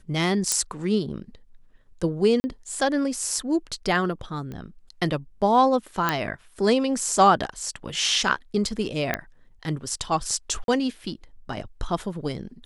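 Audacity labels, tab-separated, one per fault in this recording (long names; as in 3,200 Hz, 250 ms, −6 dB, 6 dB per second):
0.520000	0.520000	click −6 dBFS
2.400000	2.440000	drop-out 40 ms
4.520000	4.520000	click −24 dBFS
6.090000	6.090000	click −7 dBFS
9.140000	9.140000	click −9 dBFS
10.640000	10.680000	drop-out 42 ms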